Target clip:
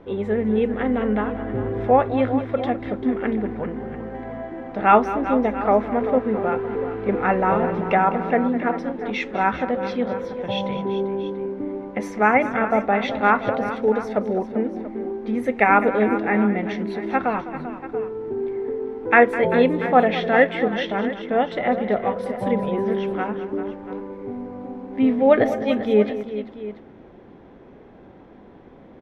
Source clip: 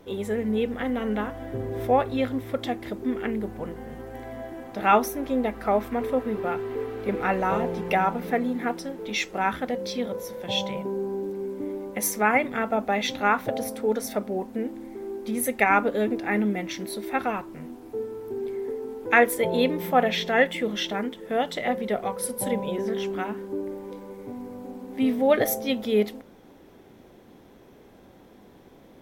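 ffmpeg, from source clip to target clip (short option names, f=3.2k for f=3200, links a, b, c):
-filter_complex "[0:a]lowpass=2.1k,asplit=2[a][b];[b]aecho=0:1:205|392|687:0.2|0.237|0.168[c];[a][c]amix=inputs=2:normalize=0,volume=5dB"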